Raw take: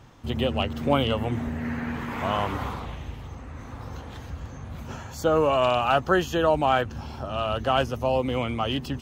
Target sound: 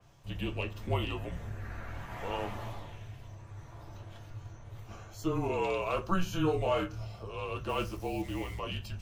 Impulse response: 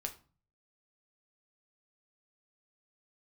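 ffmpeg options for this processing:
-filter_complex "[0:a]acrossover=split=200|4700[a][b][c];[c]acompressor=mode=upward:threshold=-56dB:ratio=2.5[d];[a][b][d]amix=inputs=3:normalize=0,afreqshift=-180,asettb=1/sr,asplit=3[e][f][g];[e]atrim=end=6.234[h];[f]atrim=start=6.23:end=7.05,asetpts=PTS-STARTPTS,afade=t=in:d=0.004:c=qsin,afade=t=out:st=0.816:d=0.004:c=qsin,asplit=2[i][j];[j]adelay=26,volume=-3dB[k];[i][k]amix=inputs=2:normalize=0,atrim=end_sample=36162[l];[g]atrim=start=7.046[m];[h][l]acrossfade=d=0.004:c1=hsin:c2=qsin[n];[n][m]acrossfade=d=0.004:c1=qsin:c2=hsin,asettb=1/sr,asplit=3[o][p][q];[o]atrim=end=7.694[r];[p]atrim=start=7.69:end=8.59,asetpts=PTS-STARTPTS,afade=t=in:d=0.004:c=qsin,afade=t=out:st=0.896:d=0.004:c=qsin,acrusher=bits=6:mix=0:aa=0.5[s];[q]atrim=start=8.586[t];[r][s]acrossfade=d=0.004:c1=hsin:c2=qsin[u];[u][t]acrossfade=d=0.004:c1=qsin:c2=hsin[v];[1:a]atrim=start_sample=2205,asetrate=66150,aresample=44100[w];[v][w]afir=irnorm=-1:irlink=0,adynamicequalizer=threshold=0.00447:dfrequency=3200:dqfactor=0.7:tfrequency=3200:tqfactor=0.7:attack=5:release=100:ratio=0.375:range=2:mode=boostabove:tftype=highshelf,volume=-5.5dB"

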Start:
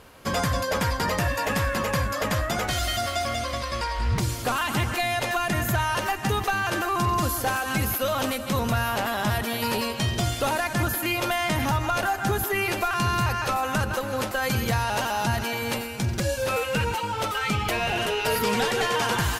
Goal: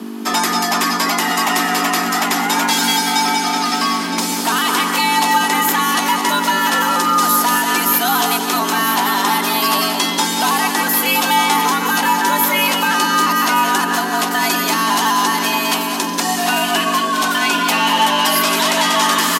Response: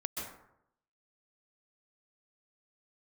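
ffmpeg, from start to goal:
-filter_complex "[0:a]equalizer=f=790:t=o:w=0.72:g=8,acrossover=split=580|2800[a][b][c];[a]aeval=exprs='(tanh(56.2*val(0)+0.7)-tanh(0.7))/56.2':c=same[d];[b]alimiter=limit=-19dB:level=0:latency=1[e];[c]acontrast=46[f];[d][e][f]amix=inputs=3:normalize=0,aeval=exprs='val(0)+0.02*(sin(2*PI*50*n/s)+sin(2*PI*2*50*n/s)/2+sin(2*PI*3*50*n/s)/3+sin(2*PI*4*50*n/s)/4+sin(2*PI*5*50*n/s)/5)':c=same,afreqshift=180,aecho=1:1:968:0.299,asplit=2[g][h];[1:a]atrim=start_sample=2205,afade=t=out:st=0.2:d=0.01,atrim=end_sample=9261,asetrate=29988,aresample=44100[i];[h][i]afir=irnorm=-1:irlink=0,volume=-2dB[j];[g][j]amix=inputs=2:normalize=0,volume=2dB"

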